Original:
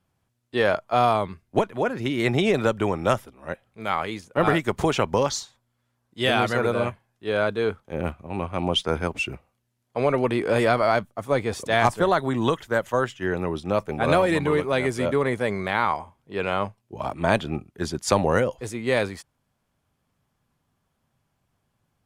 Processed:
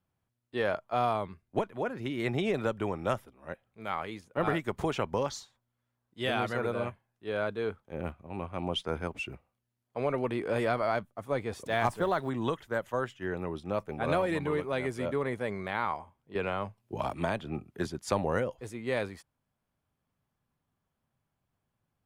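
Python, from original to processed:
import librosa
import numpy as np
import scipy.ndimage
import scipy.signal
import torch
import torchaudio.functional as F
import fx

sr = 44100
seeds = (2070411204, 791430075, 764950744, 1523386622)

y = fx.law_mismatch(x, sr, coded='mu', at=(11.66, 12.3))
y = fx.peak_eq(y, sr, hz=6500.0, db=-4.5, octaves=1.7)
y = fx.band_squash(y, sr, depth_pct=100, at=(16.35, 17.87))
y = y * 10.0 ** (-8.5 / 20.0)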